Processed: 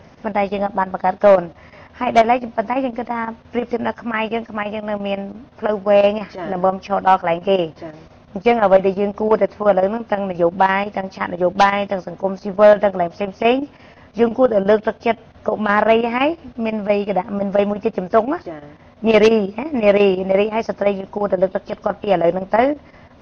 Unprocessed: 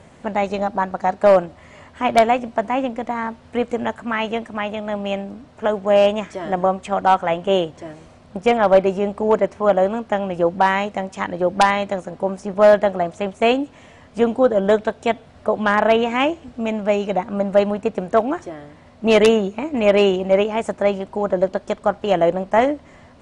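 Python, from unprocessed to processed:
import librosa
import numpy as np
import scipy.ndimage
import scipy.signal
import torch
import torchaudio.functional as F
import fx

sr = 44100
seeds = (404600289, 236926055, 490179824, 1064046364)

y = fx.freq_compress(x, sr, knee_hz=2600.0, ratio=1.5)
y = fx.chopper(y, sr, hz=5.8, depth_pct=60, duty_pct=85)
y = y * librosa.db_to_amplitude(2.0)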